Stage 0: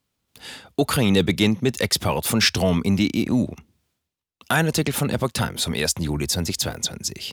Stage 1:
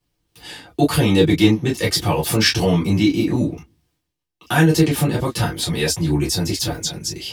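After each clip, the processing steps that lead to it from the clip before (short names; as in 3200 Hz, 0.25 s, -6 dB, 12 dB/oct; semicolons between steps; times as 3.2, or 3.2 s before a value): reverb, pre-delay 3 ms, DRR -5.5 dB; gain -6.5 dB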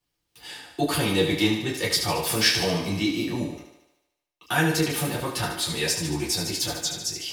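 low shelf 430 Hz -8.5 dB; thinning echo 74 ms, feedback 61%, high-pass 230 Hz, level -7 dB; gain -3.5 dB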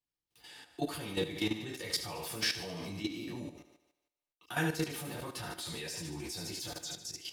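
level quantiser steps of 11 dB; gain -8 dB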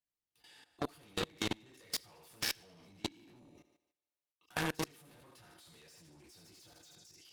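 added harmonics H 3 -19 dB, 7 -17 dB, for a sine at -18 dBFS; level quantiser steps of 13 dB; gain +5 dB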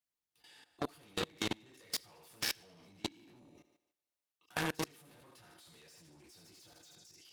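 low shelf 76 Hz -5.5 dB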